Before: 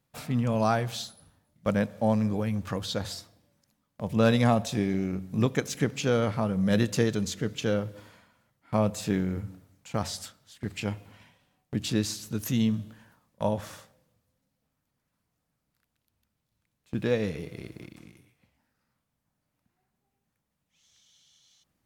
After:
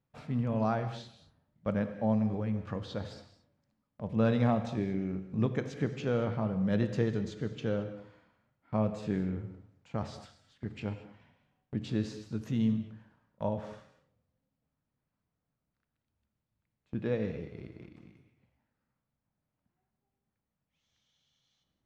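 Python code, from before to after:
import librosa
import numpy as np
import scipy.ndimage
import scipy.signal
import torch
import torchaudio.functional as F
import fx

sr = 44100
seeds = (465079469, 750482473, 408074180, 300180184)

y = fx.spacing_loss(x, sr, db_at_10k=24)
y = fx.rev_gated(y, sr, seeds[0], gate_ms=250, shape='flat', drr_db=9.0)
y = F.gain(torch.from_numpy(y), -4.5).numpy()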